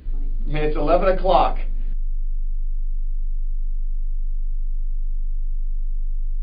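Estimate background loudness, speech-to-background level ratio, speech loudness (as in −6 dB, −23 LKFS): −31.5 LKFS, 11.0 dB, −20.5 LKFS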